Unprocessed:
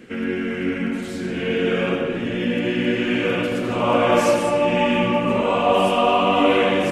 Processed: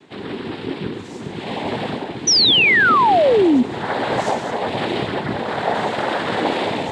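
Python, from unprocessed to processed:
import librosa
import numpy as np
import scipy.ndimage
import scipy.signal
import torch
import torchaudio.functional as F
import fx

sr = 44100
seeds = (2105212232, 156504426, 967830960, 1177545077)

y = fx.noise_vocoder(x, sr, seeds[0], bands=6)
y = fx.spec_paint(y, sr, seeds[1], shape='fall', start_s=2.27, length_s=1.36, low_hz=230.0, high_hz=6100.0, level_db=-10.0)
y = y * librosa.db_to_amplitude(-3.5)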